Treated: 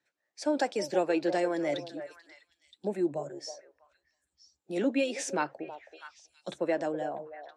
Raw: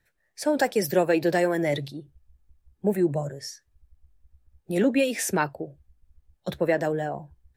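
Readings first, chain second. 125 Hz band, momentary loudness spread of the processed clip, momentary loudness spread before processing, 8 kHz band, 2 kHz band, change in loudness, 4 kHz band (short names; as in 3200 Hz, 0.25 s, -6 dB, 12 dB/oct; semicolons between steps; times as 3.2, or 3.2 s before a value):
-14.5 dB, 17 LU, 16 LU, -7.5 dB, -7.5 dB, -6.5 dB, -4.5 dB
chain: speaker cabinet 290–7600 Hz, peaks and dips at 300 Hz +4 dB, 440 Hz -4 dB, 1800 Hz -6 dB; delay with a stepping band-pass 0.323 s, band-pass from 590 Hz, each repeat 1.4 oct, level -9 dB; gain -4.5 dB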